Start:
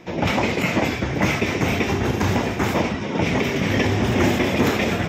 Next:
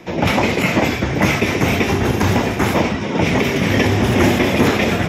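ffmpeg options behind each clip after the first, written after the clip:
ffmpeg -i in.wav -filter_complex "[0:a]equalizer=frequency=11000:width=3.9:gain=14,acrossover=split=200|7200[link_01][link_02][link_03];[link_03]alimiter=level_in=8dB:limit=-24dB:level=0:latency=1:release=377,volume=-8dB[link_04];[link_01][link_02][link_04]amix=inputs=3:normalize=0,volume=4.5dB" out.wav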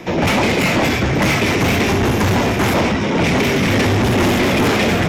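ffmpeg -i in.wav -af "asoftclip=type=tanh:threshold=-18.5dB,volume=6.5dB" out.wav

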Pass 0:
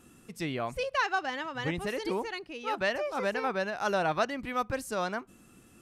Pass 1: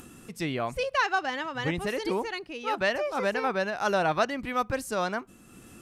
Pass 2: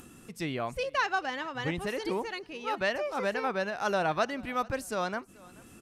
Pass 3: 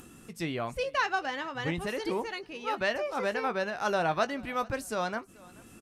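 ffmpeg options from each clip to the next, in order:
ffmpeg -i in.wav -af "acompressor=mode=upward:threshold=-45dB:ratio=2.5,volume=3dB" out.wav
ffmpeg -i in.wav -af "aecho=1:1:433|866:0.0668|0.0254,volume=-3dB" out.wav
ffmpeg -i in.wav -filter_complex "[0:a]asplit=2[link_01][link_02];[link_02]adelay=18,volume=-12.5dB[link_03];[link_01][link_03]amix=inputs=2:normalize=0" out.wav

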